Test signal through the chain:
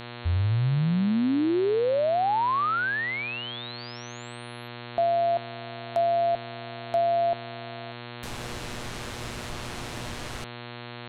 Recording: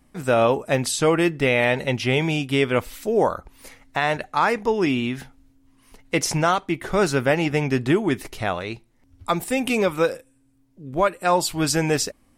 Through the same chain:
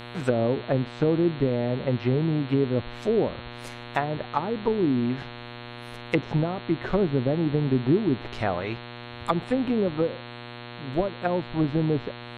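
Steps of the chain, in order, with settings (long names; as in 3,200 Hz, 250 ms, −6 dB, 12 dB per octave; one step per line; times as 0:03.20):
treble cut that deepens with the level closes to 390 Hz, closed at −17.5 dBFS
hum with harmonics 120 Hz, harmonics 36, −40 dBFS −3 dB per octave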